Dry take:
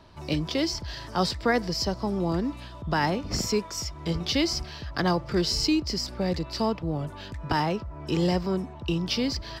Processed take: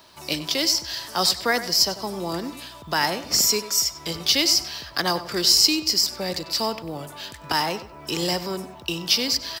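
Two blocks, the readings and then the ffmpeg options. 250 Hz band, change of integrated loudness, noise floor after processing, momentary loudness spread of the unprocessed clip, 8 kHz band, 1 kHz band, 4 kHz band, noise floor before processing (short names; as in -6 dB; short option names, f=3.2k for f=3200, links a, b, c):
-3.5 dB, +6.0 dB, -43 dBFS, 7 LU, +13.5 dB, +2.5 dB, +10.5 dB, -43 dBFS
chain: -filter_complex "[0:a]aemphasis=mode=production:type=riaa,asplit=2[a][b];[b]adelay=96,lowpass=f=4.3k:p=1,volume=-13dB,asplit=2[c][d];[d]adelay=96,lowpass=f=4.3k:p=1,volume=0.33,asplit=2[e][f];[f]adelay=96,lowpass=f=4.3k:p=1,volume=0.33[g];[a][c][e][g]amix=inputs=4:normalize=0,volume=2.5dB"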